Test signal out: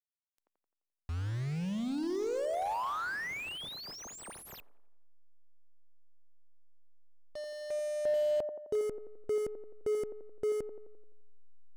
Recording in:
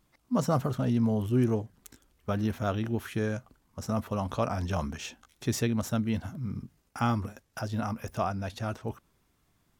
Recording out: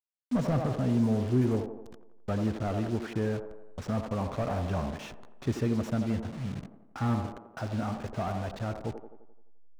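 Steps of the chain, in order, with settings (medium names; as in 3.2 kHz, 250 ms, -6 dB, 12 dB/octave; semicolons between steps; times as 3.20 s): send-on-delta sampling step -39 dBFS; feedback echo behind a band-pass 86 ms, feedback 54%, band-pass 510 Hz, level -6.5 dB; slew-rate limiter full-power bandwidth 27 Hz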